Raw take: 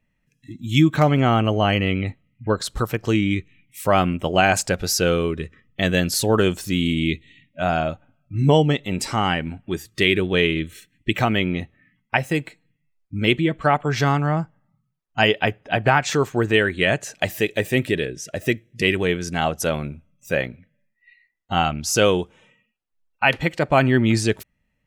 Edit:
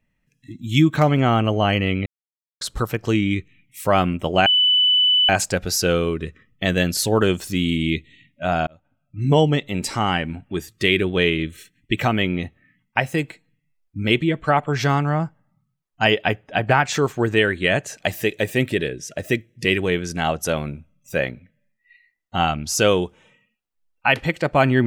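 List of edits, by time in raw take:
2.06–2.61 s: mute
4.46 s: add tone 2.99 kHz -13 dBFS 0.83 s
7.84–8.56 s: fade in

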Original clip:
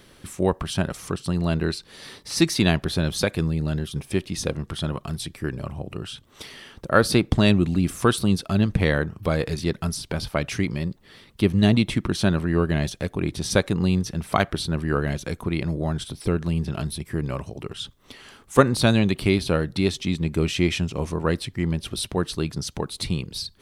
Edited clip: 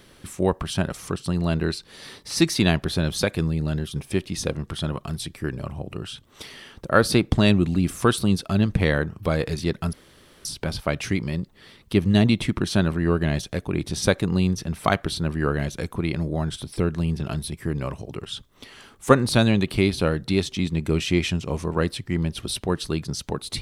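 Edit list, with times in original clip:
9.93 s: insert room tone 0.52 s

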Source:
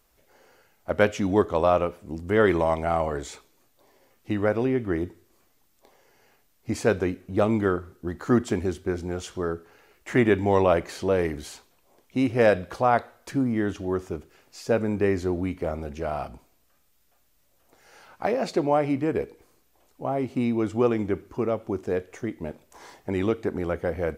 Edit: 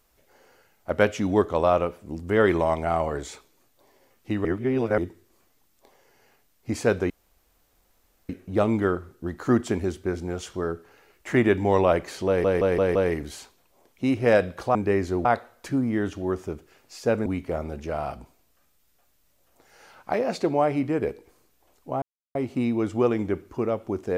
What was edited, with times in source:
4.45–4.98 s: reverse
7.10 s: insert room tone 1.19 s
11.08 s: stutter 0.17 s, 5 plays
14.89–15.39 s: move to 12.88 s
20.15 s: insert silence 0.33 s

